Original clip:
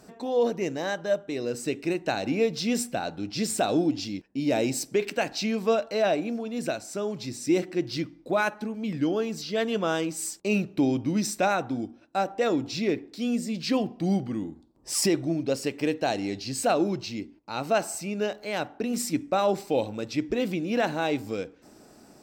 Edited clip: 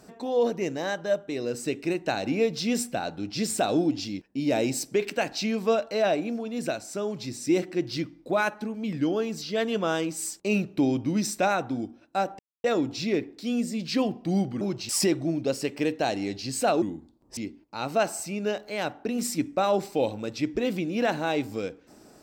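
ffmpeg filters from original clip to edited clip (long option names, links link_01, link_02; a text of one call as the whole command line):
ffmpeg -i in.wav -filter_complex "[0:a]asplit=6[link_01][link_02][link_03][link_04][link_05][link_06];[link_01]atrim=end=12.39,asetpts=PTS-STARTPTS,afade=type=out:start_time=12.386:duration=0.004:curve=hsin,apad=pad_dur=0.25[link_07];[link_02]atrim=start=12.39:end=14.362,asetpts=PTS-STARTPTS,afade=type=in:duration=0.004:curve=hsin[link_08];[link_03]atrim=start=16.838:end=17.122[link_09];[link_04]atrim=start=14.908:end=16.842[link_10];[link_05]atrim=start=14.358:end=14.912[link_11];[link_06]atrim=start=17.118[link_12];[link_07][link_08]concat=n=2:v=0:a=1[link_13];[link_13][link_09]acrossfade=duration=0.004:curve1=hsin:curve2=hsin[link_14];[link_14][link_10]acrossfade=duration=0.004:curve1=hsin:curve2=hsin[link_15];[link_15][link_11]acrossfade=duration=0.004:curve1=hsin:curve2=hsin[link_16];[link_16][link_12]acrossfade=duration=0.004:curve1=hsin:curve2=hsin" out.wav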